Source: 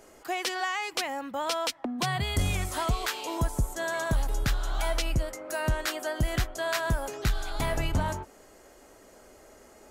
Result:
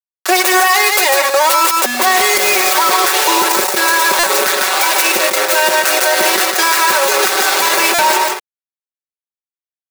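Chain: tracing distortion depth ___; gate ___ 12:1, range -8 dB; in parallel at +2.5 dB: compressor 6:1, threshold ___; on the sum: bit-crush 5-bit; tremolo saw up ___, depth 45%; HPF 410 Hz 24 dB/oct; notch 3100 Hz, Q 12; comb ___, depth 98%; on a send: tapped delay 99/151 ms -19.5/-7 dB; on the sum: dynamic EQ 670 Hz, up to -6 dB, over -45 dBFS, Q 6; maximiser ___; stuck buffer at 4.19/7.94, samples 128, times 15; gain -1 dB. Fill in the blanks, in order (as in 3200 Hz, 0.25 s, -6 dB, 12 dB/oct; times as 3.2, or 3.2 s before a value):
0.4 ms, -49 dBFS, -35 dBFS, 1.1 Hz, 5.3 ms, +20 dB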